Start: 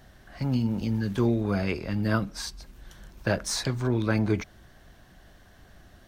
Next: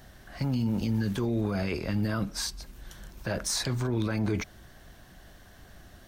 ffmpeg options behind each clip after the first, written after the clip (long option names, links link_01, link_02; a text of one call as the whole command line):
ffmpeg -i in.wav -af "highshelf=frequency=6200:gain=5.5,alimiter=limit=-22dB:level=0:latency=1:release=18,volume=1.5dB" out.wav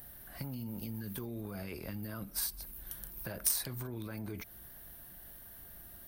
ffmpeg -i in.wav -af "acompressor=threshold=-33dB:ratio=4,aexciter=amount=5.8:drive=9.7:freq=9800,aeval=exprs='0.211*(cos(1*acos(clip(val(0)/0.211,-1,1)))-cos(1*PI/2))+0.0473*(cos(3*acos(clip(val(0)/0.211,-1,1)))-cos(3*PI/2))':channel_layout=same,volume=3dB" out.wav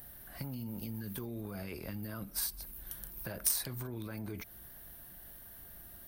ffmpeg -i in.wav -af anull out.wav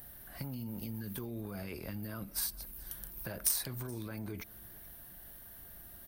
ffmpeg -i in.wav -af "aecho=1:1:426:0.0668" out.wav